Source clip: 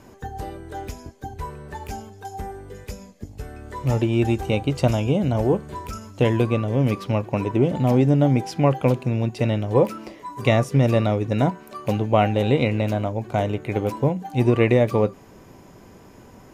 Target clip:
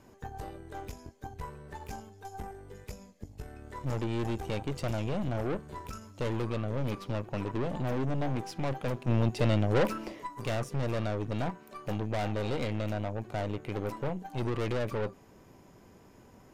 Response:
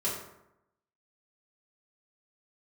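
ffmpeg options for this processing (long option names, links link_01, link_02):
-filter_complex "[0:a]aeval=exprs='(tanh(15.8*val(0)+0.75)-tanh(0.75))/15.8':channel_layout=same,asplit=3[link_01][link_02][link_03];[link_01]afade=type=out:start_time=9.07:duration=0.02[link_04];[link_02]acontrast=79,afade=type=in:start_time=9.07:duration=0.02,afade=type=out:start_time=10.26:duration=0.02[link_05];[link_03]afade=type=in:start_time=10.26:duration=0.02[link_06];[link_04][link_05][link_06]amix=inputs=3:normalize=0,volume=-5dB"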